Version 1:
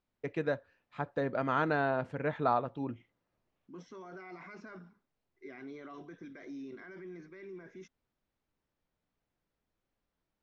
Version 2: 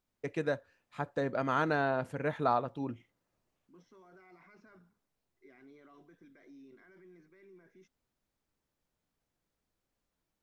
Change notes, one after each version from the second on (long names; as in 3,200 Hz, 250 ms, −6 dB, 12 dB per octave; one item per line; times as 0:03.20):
first voice: remove low-pass filter 3,900 Hz 12 dB per octave
second voice −11.0 dB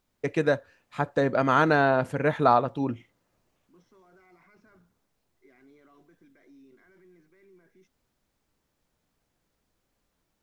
first voice +9.0 dB